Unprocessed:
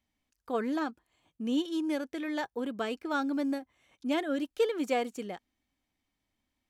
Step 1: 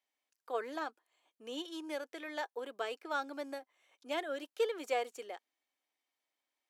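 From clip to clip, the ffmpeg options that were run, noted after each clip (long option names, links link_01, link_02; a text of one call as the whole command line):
ffmpeg -i in.wav -af "highpass=frequency=410:width=0.5412,highpass=frequency=410:width=1.3066,volume=-3.5dB" out.wav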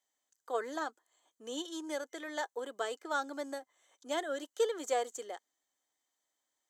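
ffmpeg -i in.wav -af "superequalizer=12b=0.355:15b=2.82,volume=2dB" out.wav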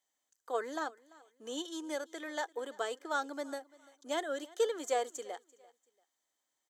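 ffmpeg -i in.wav -af "aecho=1:1:341|682:0.075|0.0232" out.wav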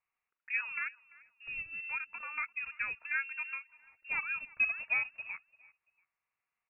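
ffmpeg -i in.wav -af "lowpass=frequency=2600:width_type=q:width=0.5098,lowpass=frequency=2600:width_type=q:width=0.6013,lowpass=frequency=2600:width_type=q:width=0.9,lowpass=frequency=2600:width_type=q:width=2.563,afreqshift=-3000" out.wav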